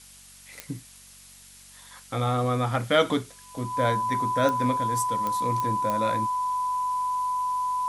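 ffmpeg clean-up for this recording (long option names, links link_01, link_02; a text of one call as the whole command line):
ffmpeg -i in.wav -af "adeclick=threshold=4,bandreject=frequency=47.1:width_type=h:width=4,bandreject=frequency=94.2:width_type=h:width=4,bandreject=frequency=141.3:width_type=h:width=4,bandreject=frequency=188.4:width_type=h:width=4,bandreject=frequency=235.5:width_type=h:width=4,bandreject=frequency=1000:width=30,afftdn=noise_reduction=23:noise_floor=-50" out.wav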